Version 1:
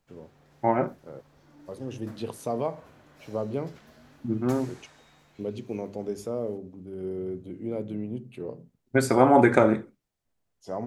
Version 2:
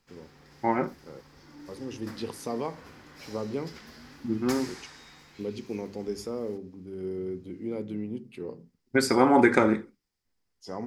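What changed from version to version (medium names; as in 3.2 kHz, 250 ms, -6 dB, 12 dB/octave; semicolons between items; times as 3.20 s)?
background +6.0 dB; master: add graphic EQ with 31 bands 125 Hz -10 dB, 630 Hz -11 dB, 2 kHz +4 dB, 5 kHz +10 dB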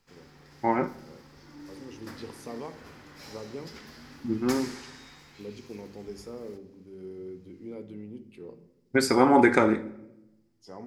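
first voice -8.0 dB; reverb: on, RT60 0.90 s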